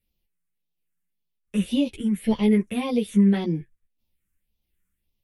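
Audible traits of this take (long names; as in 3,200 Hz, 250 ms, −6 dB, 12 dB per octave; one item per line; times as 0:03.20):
phaser sweep stages 4, 1.8 Hz, lowest notch 720–1,500 Hz
tremolo saw down 1.3 Hz, depth 35%
a shimmering, thickened sound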